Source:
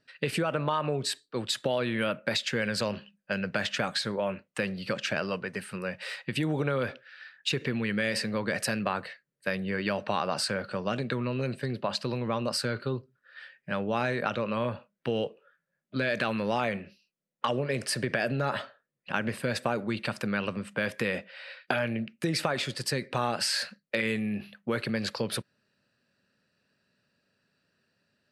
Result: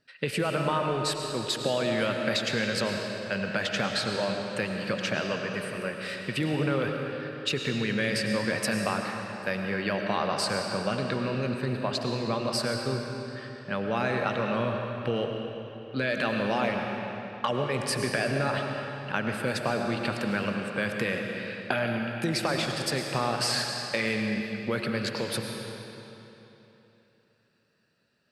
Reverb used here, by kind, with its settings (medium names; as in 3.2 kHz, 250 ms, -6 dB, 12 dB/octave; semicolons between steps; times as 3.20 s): algorithmic reverb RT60 3.3 s, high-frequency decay 0.85×, pre-delay 65 ms, DRR 2.5 dB